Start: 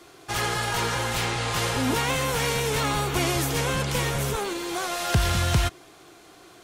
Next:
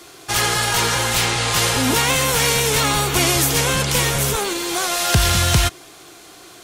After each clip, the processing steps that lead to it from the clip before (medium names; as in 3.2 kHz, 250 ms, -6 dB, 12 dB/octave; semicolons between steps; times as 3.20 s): treble shelf 2.9 kHz +8 dB; trim +5 dB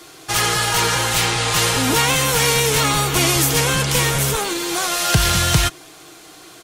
comb 6.4 ms, depth 32%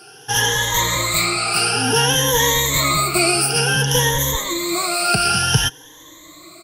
drifting ripple filter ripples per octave 1.1, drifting +0.56 Hz, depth 24 dB; trim -6 dB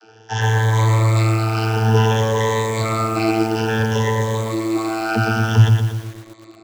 vocoder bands 32, saw 111 Hz; bit-crushed delay 117 ms, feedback 55%, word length 6-bit, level -4.5 dB; trim -1 dB